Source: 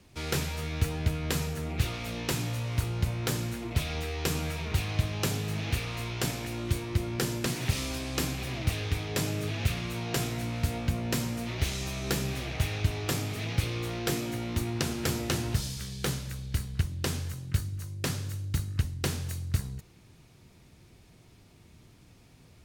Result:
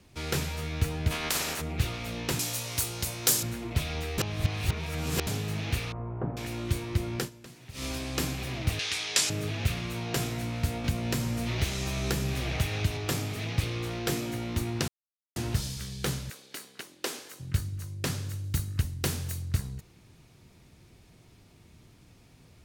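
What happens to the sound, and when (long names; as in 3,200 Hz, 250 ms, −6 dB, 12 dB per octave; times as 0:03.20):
0:01.10–0:01.60: ceiling on every frequency bin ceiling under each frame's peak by 25 dB
0:02.39–0:03.43: bass and treble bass −9 dB, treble +15 dB
0:04.18–0:05.27: reverse
0:05.92–0:06.37: low-pass filter 1,100 Hz 24 dB per octave
0:07.18–0:07.85: duck −18 dB, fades 0.12 s
0:08.79–0:09.30: meter weighting curve ITU-R 468
0:10.84–0:12.97: multiband upward and downward compressor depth 70%
0:13.50–0:13.91: highs frequency-modulated by the lows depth 0.28 ms
0:14.88–0:15.36: silence
0:16.30–0:17.40: high-pass filter 310 Hz 24 dB per octave
0:18.44–0:19.41: high-shelf EQ 7,800 Hz → 11,000 Hz +7.5 dB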